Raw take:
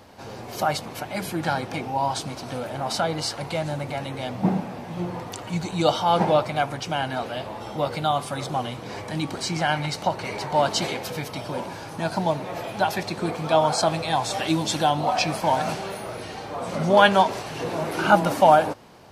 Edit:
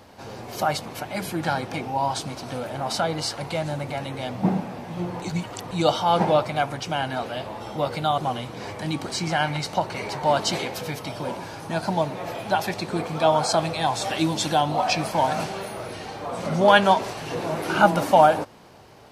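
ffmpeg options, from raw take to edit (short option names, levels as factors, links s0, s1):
-filter_complex "[0:a]asplit=4[s0][s1][s2][s3];[s0]atrim=end=5.222[s4];[s1]atrim=start=5.218:end=5.712,asetpts=PTS-STARTPTS,areverse[s5];[s2]atrim=start=5.708:end=8.182[s6];[s3]atrim=start=8.468[s7];[s4][s5]acrossfade=d=0.004:c1=hsin:c2=hsin[s8];[s8][s6]acrossfade=d=0.004:c1=hsin:c2=hsin[s9];[s9][s7]acrossfade=d=0.004:c1=hsin:c2=hsin"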